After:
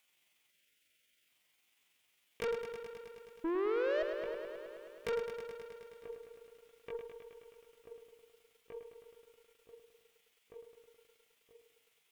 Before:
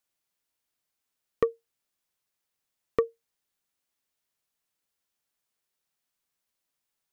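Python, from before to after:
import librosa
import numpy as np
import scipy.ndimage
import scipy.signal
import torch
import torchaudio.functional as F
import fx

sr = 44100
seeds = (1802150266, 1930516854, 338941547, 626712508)

p1 = fx.tracing_dist(x, sr, depth_ms=0.39)
p2 = fx.over_compress(p1, sr, threshold_db=-25.0, ratio=-0.5)
p3 = p2 + fx.echo_filtered(p2, sr, ms=1068, feedback_pct=58, hz=1400.0, wet_db=-14.5, dry=0)
p4 = fx.stretch_grains(p3, sr, factor=1.7, grain_ms=91.0)
p5 = fx.spec_paint(p4, sr, seeds[0], shape='rise', start_s=3.44, length_s=0.59, low_hz=320.0, high_hz=640.0, level_db=-29.0)
p6 = fx.band_shelf(p5, sr, hz=2600.0, db=10.0, octaves=1.0)
p7 = fx.spec_erase(p6, sr, start_s=0.5, length_s=0.78, low_hz=650.0, high_hz=1300.0)
p8 = fx.low_shelf(p7, sr, hz=110.0, db=-8.0)
p9 = fx.tube_stage(p8, sr, drive_db=37.0, bias=0.3)
p10 = fx.echo_crushed(p9, sr, ms=106, feedback_pct=80, bits=13, wet_db=-7.5)
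y = p10 * 10.0 ** (4.5 / 20.0)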